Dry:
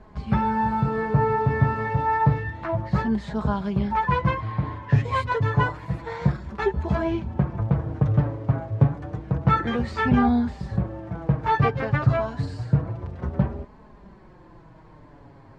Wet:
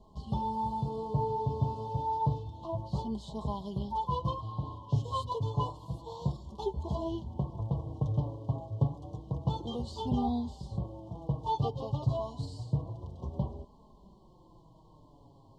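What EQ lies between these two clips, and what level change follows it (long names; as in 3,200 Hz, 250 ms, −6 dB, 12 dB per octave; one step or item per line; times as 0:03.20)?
Chebyshev band-stop filter 1,100–3,000 Hz, order 5
high-shelf EQ 3,800 Hz +10 dB
dynamic equaliser 200 Hz, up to −4 dB, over −37 dBFS, Q 2.5
−9.0 dB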